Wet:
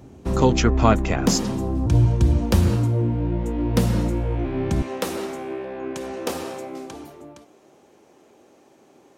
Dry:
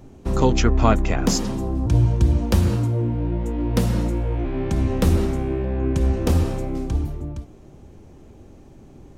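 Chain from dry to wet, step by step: high-pass 55 Hz 12 dB/octave, from 4.82 s 450 Hz; trim +1 dB

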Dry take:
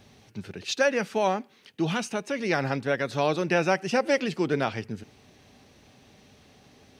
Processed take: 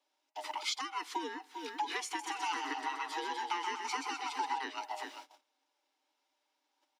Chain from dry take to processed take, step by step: split-band scrambler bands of 500 Hz; Butterworth band-stop 680 Hz, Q 3.3; treble shelf 4.7 kHz +2.5 dB; delay 395 ms -18 dB; gate -52 dBFS, range -27 dB; compression 12:1, threshold -36 dBFS, peak gain reduction 18.5 dB; steep high-pass 270 Hz 96 dB/octave; 2.06–4.59 s: modulated delay 128 ms, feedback 52%, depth 56 cents, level -6 dB; trim +3.5 dB

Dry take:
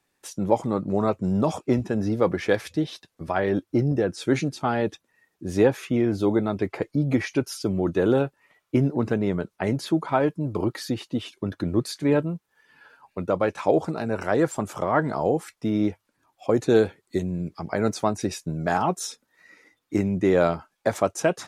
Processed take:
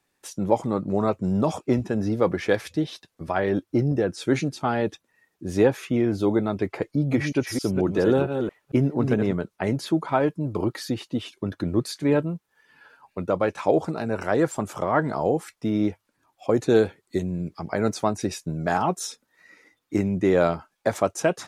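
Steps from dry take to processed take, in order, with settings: 6.91–9.33 s: chunks repeated in reverse 226 ms, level -6 dB

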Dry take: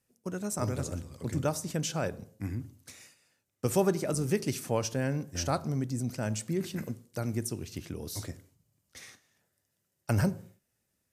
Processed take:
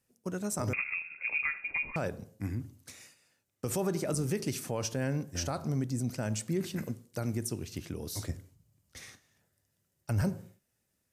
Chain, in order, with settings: 8.29–10.22 s: bass shelf 120 Hz +10.5 dB; peak limiter -22 dBFS, peak gain reduction 8.5 dB; 0.73–1.96 s: frequency inversion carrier 2.6 kHz

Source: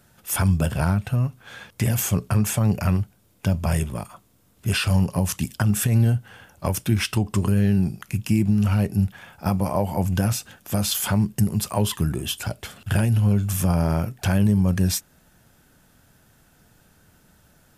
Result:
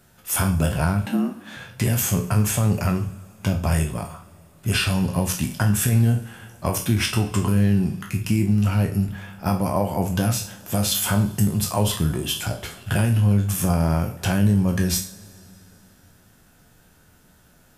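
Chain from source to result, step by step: spectral sustain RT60 0.31 s; two-slope reverb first 0.47 s, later 3.3 s, from -18 dB, DRR 9 dB; 1.06–1.57 s: frequency shift +93 Hz

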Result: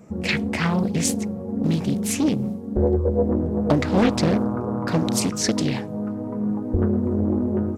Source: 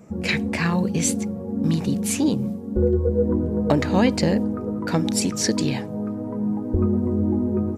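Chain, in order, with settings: 4.02–5.28 s: mains buzz 120 Hz, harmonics 10, -31 dBFS -3 dB/octave; loudspeaker Doppler distortion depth 0.48 ms

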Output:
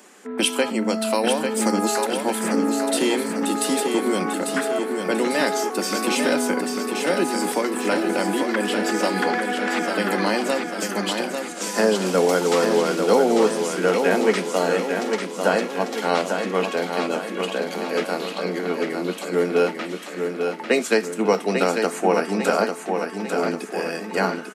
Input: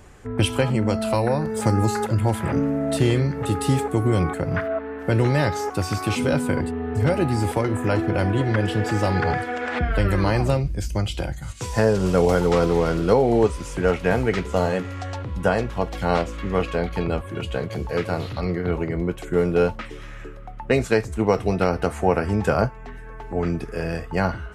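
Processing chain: steep high-pass 190 Hz 72 dB/octave; treble shelf 2.9 kHz +8.5 dB; on a send: feedback delay 846 ms, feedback 51%, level -5.5 dB

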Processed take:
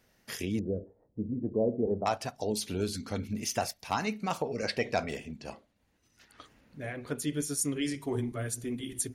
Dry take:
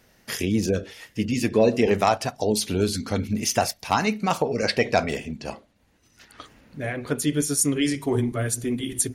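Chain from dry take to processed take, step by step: 0.59–2.06 s: inverse Chebyshev low-pass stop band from 3.9 kHz, stop band 80 dB; trim -9 dB

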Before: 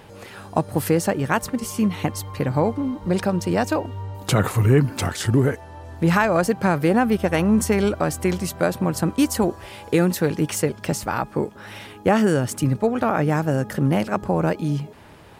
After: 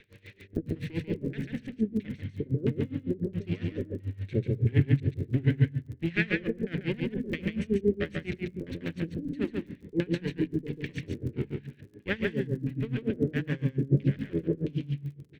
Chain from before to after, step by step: comb filter that takes the minimum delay 0.5 ms; LFO low-pass square 1.5 Hz 410–2900 Hz; high-order bell 930 Hz -14.5 dB 1.3 oct; crackle 30 per s -31 dBFS; bass shelf 210 Hz -4.5 dB; band-stop 500 Hz, Q 14; delay 141 ms -3 dB; on a send at -15.5 dB: reverberation RT60 1.0 s, pre-delay 3 ms; on the sum: logarithmic tremolo 7.1 Hz, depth 21 dB; trim -7.5 dB

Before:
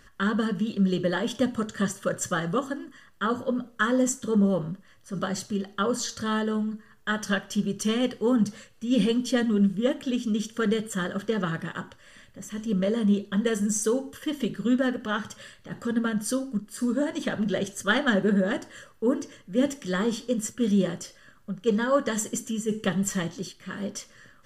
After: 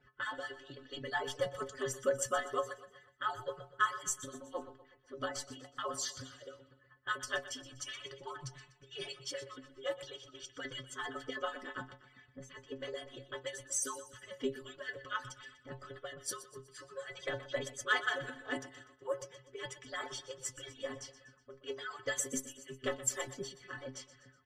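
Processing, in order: harmonic-percussive separation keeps percussive; inharmonic resonator 130 Hz, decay 0.21 s, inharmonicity 0.008; level-controlled noise filter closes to 2.2 kHz, open at -37.5 dBFS; on a send: feedback delay 123 ms, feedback 46%, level -15 dB; on the sum: trim +3.5 dB

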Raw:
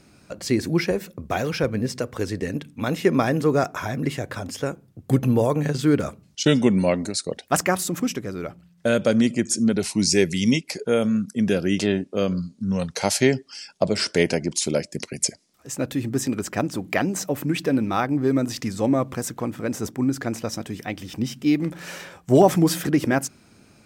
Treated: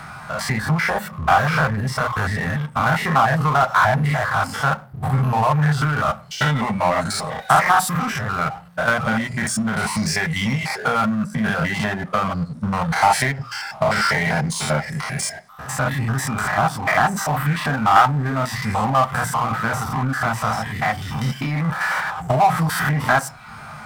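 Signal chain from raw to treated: spectrogram pixelated in time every 100 ms; hum notches 60/120 Hz; compression, threshold -23 dBFS, peak gain reduction 10 dB; FFT filter 170 Hz 0 dB, 330 Hz -28 dB, 780 Hz +7 dB, 1.3 kHz +9 dB, 2.4 kHz -1 dB; reverberation RT60 0.40 s, pre-delay 3 ms, DRR 5.5 dB; reverb removal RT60 0.52 s; power-law waveshaper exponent 0.7; trim -1 dB

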